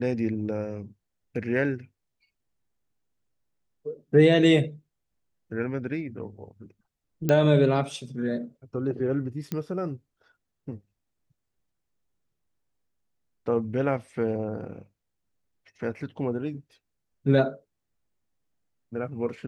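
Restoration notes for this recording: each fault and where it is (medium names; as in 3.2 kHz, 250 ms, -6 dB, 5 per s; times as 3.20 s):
7.29 s: pop -11 dBFS
9.52 s: pop -17 dBFS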